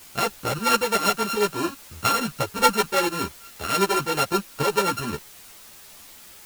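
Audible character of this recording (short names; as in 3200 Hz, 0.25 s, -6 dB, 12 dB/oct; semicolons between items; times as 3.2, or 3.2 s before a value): a buzz of ramps at a fixed pitch in blocks of 32 samples; tremolo saw up 5.2 Hz, depth 65%; a quantiser's noise floor 8-bit, dither triangular; a shimmering, thickened sound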